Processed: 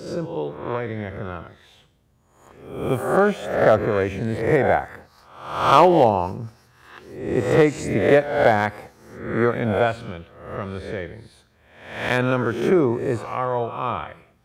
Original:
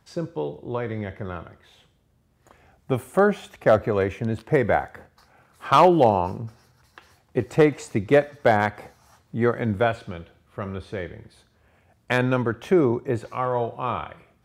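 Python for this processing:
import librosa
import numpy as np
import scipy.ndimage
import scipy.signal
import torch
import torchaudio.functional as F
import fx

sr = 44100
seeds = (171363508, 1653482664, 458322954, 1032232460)

y = fx.spec_swells(x, sr, rise_s=0.74)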